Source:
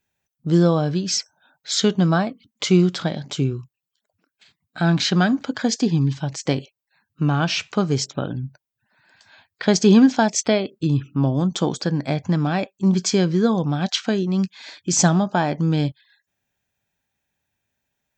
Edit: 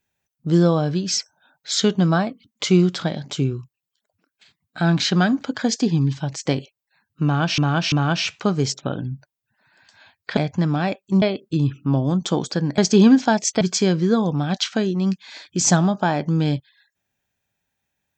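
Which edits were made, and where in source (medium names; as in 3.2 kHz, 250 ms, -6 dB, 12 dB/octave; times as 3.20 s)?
7.24–7.58 s: loop, 3 plays
9.69–10.52 s: swap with 12.08–12.93 s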